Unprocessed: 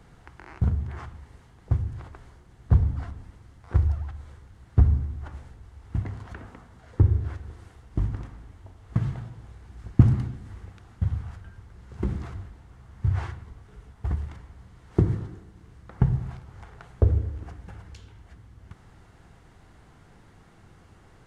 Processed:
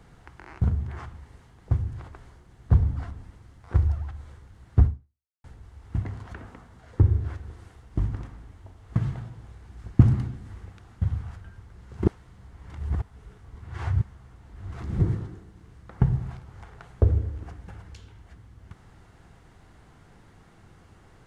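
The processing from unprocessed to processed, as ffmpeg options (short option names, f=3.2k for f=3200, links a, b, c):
-filter_complex "[0:a]asplit=4[a][b][c][d];[a]atrim=end=5.44,asetpts=PTS-STARTPTS,afade=t=out:st=4.85:d=0.59:c=exp[e];[b]atrim=start=5.44:end=12.062,asetpts=PTS-STARTPTS,afade=t=in:d=0.004:c=hsin[f];[c]atrim=start=12.058:end=15.002,asetpts=PTS-STARTPTS,areverse[g];[d]atrim=start=14.998[h];[e][f]concat=n=2:v=0:a=1[i];[i][g]acrossfade=d=0.004:c1=hsin:c2=hsin[j];[j][h]acrossfade=d=0.004:c1=hsin:c2=hsin"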